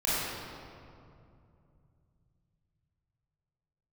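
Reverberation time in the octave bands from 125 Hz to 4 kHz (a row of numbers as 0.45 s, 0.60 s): 4.9 s, 3.4 s, 2.7 s, 2.4 s, 1.8 s, 1.4 s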